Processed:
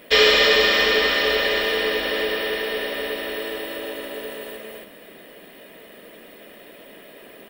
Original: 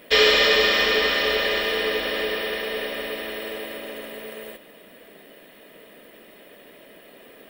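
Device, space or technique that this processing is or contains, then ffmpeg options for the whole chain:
ducked delay: -filter_complex "[0:a]asplit=3[a][b][c];[b]adelay=276,volume=-2dB[d];[c]apad=whole_len=342886[e];[d][e]sidechaincompress=threshold=-33dB:ratio=8:attack=16:release=248[f];[a][f]amix=inputs=2:normalize=0,volume=1.5dB"

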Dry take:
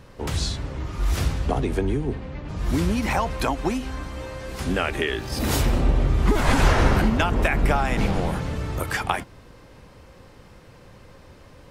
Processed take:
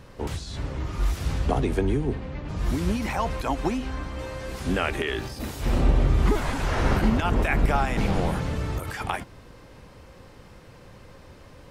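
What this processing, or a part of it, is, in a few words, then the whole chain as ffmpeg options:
de-esser from a sidechain: -filter_complex "[0:a]asettb=1/sr,asplit=3[a][b][c];[a]atrim=end=3.704[d];[b]atrim=start=3.7:end=4.19,asetpts=PTS-STARTPTS,afade=t=in:d=0.004:c=qsin,afade=t=out:st=0.486:d=0.004:c=qsin,highshelf=f=7.2k:g=-9.5[e];[c]atrim=start=4.186[f];[d][e]acrossfade=d=0.004:c1=hsin:c2=qsin[g];[g][f]acrossfade=d=0.004:c1=qsin:c2=hsin,asplit=2[h][i];[i]highpass=f=4.5k:w=0.5412,highpass=f=4.5k:w=1.3066,apad=whole_len=516373[j];[h][j]sidechaincompress=threshold=-41dB:ratio=8:attack=1.3:release=51"

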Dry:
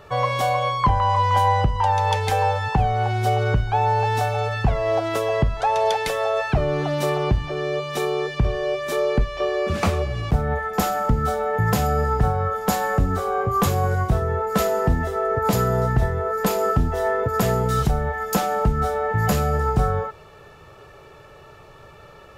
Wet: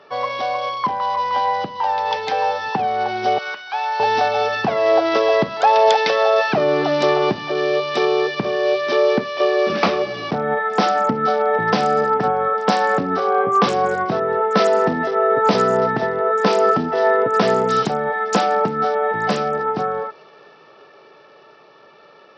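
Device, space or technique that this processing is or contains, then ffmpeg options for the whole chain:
Bluetooth headset: -filter_complex "[0:a]asettb=1/sr,asplit=3[a][b][c];[a]atrim=end=3.384[d];[b]atrim=start=3.38:end=4,asetpts=PTS-STARTPTS,afade=t=in:d=0.004:c=qsin,afade=t=out:st=0.616:d=0.004:c=qsin,highpass=1.2k[e];[c]atrim=start=3.996[f];[d][e]acrossfade=d=0.004:c1=hsin:c2=qsin[g];[g][f]acrossfade=d=0.004:c1=qsin:c2=hsin,highpass=f=210:w=0.5412,highpass=f=210:w=1.3066,dynaudnorm=f=210:g=31:m=13dB,aresample=16000,aresample=44100,volume=-1dB" -ar 44100 -c:a sbc -b:a 64k

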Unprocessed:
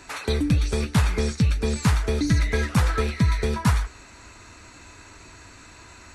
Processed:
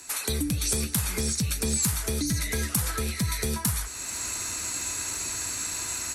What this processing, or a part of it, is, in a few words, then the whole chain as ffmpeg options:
FM broadcast chain: -filter_complex "[0:a]highpass=f=67:p=1,dynaudnorm=f=180:g=3:m=14dB,acrossover=split=84|230[a][b][c];[a]acompressor=threshold=-25dB:ratio=4[d];[b]acompressor=threshold=-15dB:ratio=4[e];[c]acompressor=threshold=-26dB:ratio=4[f];[d][e][f]amix=inputs=3:normalize=0,aemphasis=mode=production:type=50fm,alimiter=limit=-10.5dB:level=0:latency=1:release=141,asoftclip=type=hard:threshold=-13dB,lowpass=f=15k:w=0.5412,lowpass=f=15k:w=1.3066,aemphasis=mode=production:type=50fm,volume=-7.5dB"

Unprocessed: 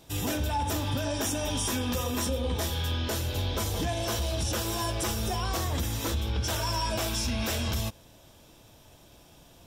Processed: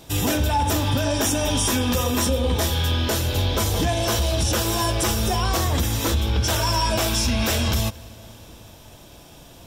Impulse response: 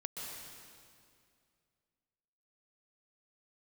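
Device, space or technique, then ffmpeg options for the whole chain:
compressed reverb return: -filter_complex "[0:a]asplit=2[a][b];[1:a]atrim=start_sample=2205[c];[b][c]afir=irnorm=-1:irlink=0,acompressor=threshold=-35dB:ratio=6,volume=-11dB[d];[a][d]amix=inputs=2:normalize=0,volume=7.5dB"

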